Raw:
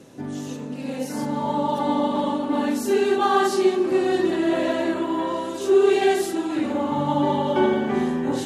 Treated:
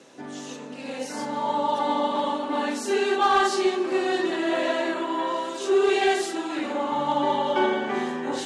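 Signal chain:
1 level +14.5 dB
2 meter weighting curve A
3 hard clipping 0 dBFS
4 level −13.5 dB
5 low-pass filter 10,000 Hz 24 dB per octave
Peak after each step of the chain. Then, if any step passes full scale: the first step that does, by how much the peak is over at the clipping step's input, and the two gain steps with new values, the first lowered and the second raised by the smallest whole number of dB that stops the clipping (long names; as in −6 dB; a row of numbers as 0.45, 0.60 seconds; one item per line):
+7.0, +5.0, 0.0, −13.5, −13.0 dBFS
step 1, 5.0 dB
step 1 +9.5 dB, step 4 −8.5 dB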